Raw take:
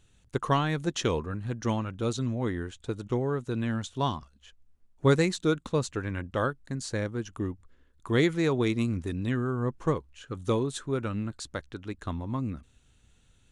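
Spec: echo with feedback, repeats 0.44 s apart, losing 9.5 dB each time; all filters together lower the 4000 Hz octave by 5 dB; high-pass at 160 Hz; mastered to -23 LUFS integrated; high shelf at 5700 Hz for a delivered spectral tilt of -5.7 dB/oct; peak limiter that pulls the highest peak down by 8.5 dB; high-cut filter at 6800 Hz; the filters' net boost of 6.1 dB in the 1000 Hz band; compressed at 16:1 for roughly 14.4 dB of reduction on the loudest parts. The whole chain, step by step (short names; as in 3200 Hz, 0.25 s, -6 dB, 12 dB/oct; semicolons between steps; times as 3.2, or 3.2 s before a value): HPF 160 Hz; LPF 6800 Hz; bell 1000 Hz +7.5 dB; bell 4000 Hz -7.5 dB; high shelf 5700 Hz +3.5 dB; compressor 16:1, threshold -29 dBFS; limiter -24 dBFS; feedback echo 0.44 s, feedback 33%, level -9.5 dB; gain +14.5 dB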